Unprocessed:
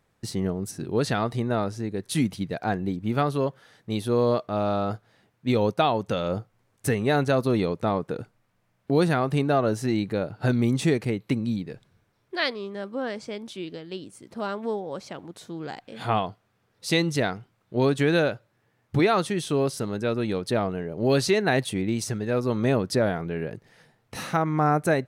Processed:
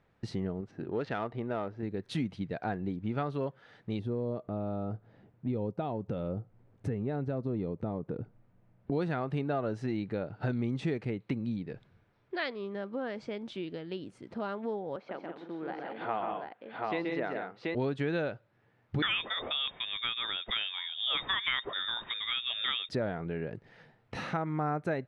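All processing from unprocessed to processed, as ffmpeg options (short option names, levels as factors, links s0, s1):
-filter_complex "[0:a]asettb=1/sr,asplit=3[s0][s1][s2];[s0]atrim=end=0.614[s3];[s1]atrim=start=0.61:end=1.83,asetpts=PTS-STARTPTS,afade=t=in:d=0.004:c=qsin,afade=t=out:st=1.216:d=0.004:c=qsin,adynamicsmooth=sensitivity=4.5:basefreq=1900,bass=f=250:g=-7,treble=f=4000:g=-3[s4];[s2]atrim=start=1.826[s5];[s3][s4]acrossfade=d=0.004:c1=hsin:c2=qsin[s6];[s6][s5]acrossfade=d=0.004:c1=qsin:c2=hsin,asettb=1/sr,asplit=3[s7][s8][s9];[s7]atrim=end=3.994[s10];[s8]atrim=start=3.99:end=8.92,asetpts=PTS-STARTPTS,afade=t=in:d=0.004:c=qsin,afade=t=out:st=4.926:d=0.004:c=qsin,tiltshelf=f=790:g=8,acompressor=threshold=0.02:ratio=1.5:attack=3.2:release=140:knee=1:detection=peak[s11];[s9]atrim=start=8.916[s12];[s10][s11]acrossfade=d=0.004:c1=hsin:c2=qsin[s13];[s13][s12]acrossfade=d=0.004:c1=qsin:c2=hsin,asettb=1/sr,asplit=3[s14][s15][s16];[s14]atrim=end=14.964[s17];[s15]atrim=start=14.96:end=17.75,asetpts=PTS-STARTPTS,afade=t=in:d=0.004:c=qsin,afade=t=out:st=2.786:d=0.004:c=qsin,highpass=310,lowpass=2300,aecho=1:1:129|177|735:0.562|0.376|0.708,atrim=end_sample=123039[s18];[s16]atrim=start=17.746[s19];[s17][s18]acrossfade=d=0.004:c1=hsin:c2=qsin[s20];[s20][s19]acrossfade=d=0.004:c1=qsin:c2=hsin,asettb=1/sr,asplit=3[s21][s22][s23];[s21]atrim=end=19.024[s24];[s22]atrim=start=19.02:end=22.89,asetpts=PTS-STARTPTS,afade=t=in:d=0.004:c=qsin,afade=t=out:st=3.866:d=0.004:c=qsin,equalizer=f=3000:t=o:w=2.3:g=10.5,asoftclip=type=hard:threshold=0.335,lowpass=f=3200:t=q:w=0.5098,lowpass=f=3200:t=q:w=0.6013,lowpass=f=3200:t=q:w=0.9,lowpass=f=3200:t=q:w=2.563,afreqshift=-3800[s25];[s23]atrim=start=22.886[s26];[s24][s25]acrossfade=d=0.004:c1=hsin:c2=qsin[s27];[s27][s26]acrossfade=d=0.004:c1=qsin:c2=hsin,lowpass=3100,bandreject=f=1100:w=19,acompressor=threshold=0.0158:ratio=2"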